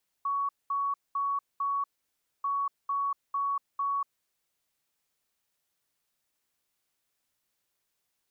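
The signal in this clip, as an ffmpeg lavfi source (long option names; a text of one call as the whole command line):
ffmpeg -f lavfi -i "aevalsrc='0.0473*sin(2*PI*1120*t)*clip(min(mod(mod(t,2.19),0.45),0.24-mod(mod(t,2.19),0.45))/0.005,0,1)*lt(mod(t,2.19),1.8)':duration=4.38:sample_rate=44100" out.wav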